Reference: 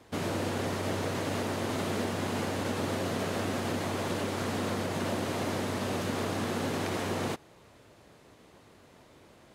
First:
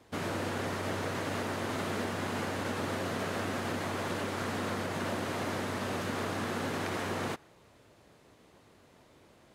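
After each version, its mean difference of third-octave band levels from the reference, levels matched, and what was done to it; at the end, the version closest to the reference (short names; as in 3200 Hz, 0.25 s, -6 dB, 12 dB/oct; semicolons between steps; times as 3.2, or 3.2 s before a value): 1.0 dB: dynamic EQ 1500 Hz, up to +5 dB, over -50 dBFS, Q 0.98; gain -3.5 dB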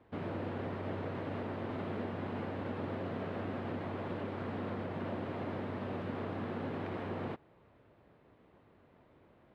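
7.5 dB: air absorption 480 m; gain -5.5 dB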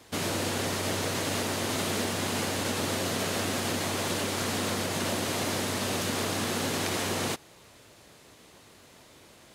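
3.5 dB: high shelf 2400 Hz +11 dB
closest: first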